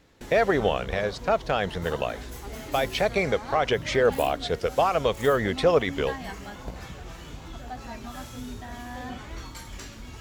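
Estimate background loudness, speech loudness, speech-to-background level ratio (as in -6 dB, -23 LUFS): -39.0 LUFS, -25.5 LUFS, 13.5 dB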